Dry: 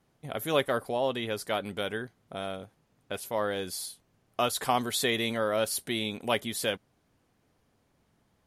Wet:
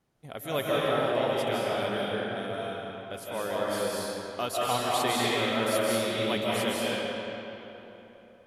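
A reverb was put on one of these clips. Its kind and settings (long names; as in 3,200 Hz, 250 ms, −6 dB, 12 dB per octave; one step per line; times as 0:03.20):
comb and all-pass reverb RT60 3.5 s, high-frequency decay 0.65×, pre-delay 120 ms, DRR −6.5 dB
level −5 dB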